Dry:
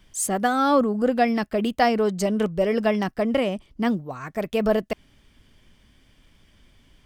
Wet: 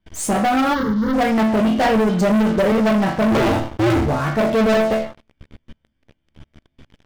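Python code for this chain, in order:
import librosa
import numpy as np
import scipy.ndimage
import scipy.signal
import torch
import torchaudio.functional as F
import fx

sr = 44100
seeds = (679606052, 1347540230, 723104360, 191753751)

y = fx.cycle_switch(x, sr, every=2, mode='inverted', at=(3.3, 4.02), fade=0.02)
y = fx.lowpass(y, sr, hz=3800.0, slope=6)
y = fx.low_shelf(y, sr, hz=60.0, db=-8.0)
y = fx.doubler(y, sr, ms=15.0, db=-4)
y = fx.rider(y, sr, range_db=4, speed_s=0.5)
y = fx.tilt_eq(y, sr, slope=-2.0)
y = fx.resonator_bank(y, sr, root=38, chord='minor', decay_s=0.44)
y = fx.leveller(y, sr, passes=5)
y = fx.fixed_phaser(y, sr, hz=2500.0, stages=6, at=(0.73, 1.13), fade=0.02)
y = fx.band_squash(y, sr, depth_pct=70, at=(1.85, 2.72))
y = y * librosa.db_to_amplitude(5.0)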